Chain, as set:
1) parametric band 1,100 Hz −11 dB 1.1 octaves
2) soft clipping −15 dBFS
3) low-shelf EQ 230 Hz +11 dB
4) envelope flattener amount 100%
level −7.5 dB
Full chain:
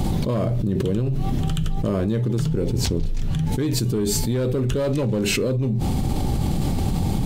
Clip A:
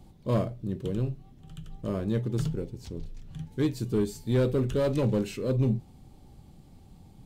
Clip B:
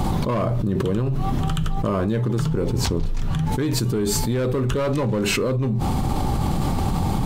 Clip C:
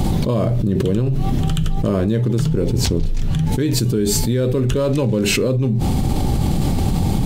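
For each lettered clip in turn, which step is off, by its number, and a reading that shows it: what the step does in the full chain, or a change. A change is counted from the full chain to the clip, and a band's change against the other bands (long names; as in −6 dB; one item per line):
4, change in crest factor +4.0 dB
1, 1 kHz band +6.5 dB
2, distortion level −14 dB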